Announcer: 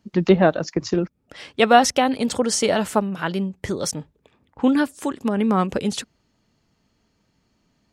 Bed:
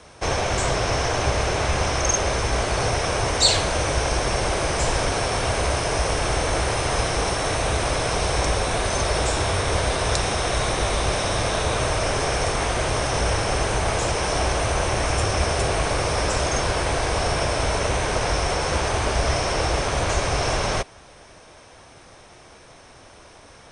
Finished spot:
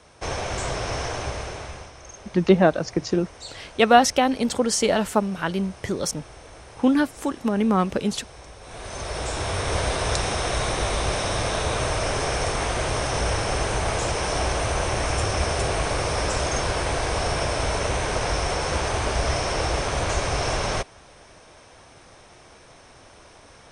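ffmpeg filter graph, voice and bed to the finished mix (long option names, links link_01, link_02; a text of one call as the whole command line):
ffmpeg -i stem1.wav -i stem2.wav -filter_complex "[0:a]adelay=2200,volume=-1dB[link_01];[1:a]volume=14.5dB,afade=type=out:start_time=1.03:duration=0.89:silence=0.149624,afade=type=in:start_time=8.6:duration=1.2:silence=0.1[link_02];[link_01][link_02]amix=inputs=2:normalize=0" out.wav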